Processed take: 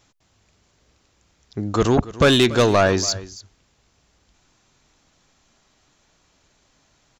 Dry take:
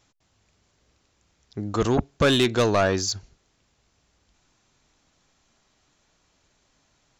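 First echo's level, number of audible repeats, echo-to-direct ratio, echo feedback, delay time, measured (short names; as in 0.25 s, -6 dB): -17.5 dB, 1, -17.5 dB, no steady repeat, 0.285 s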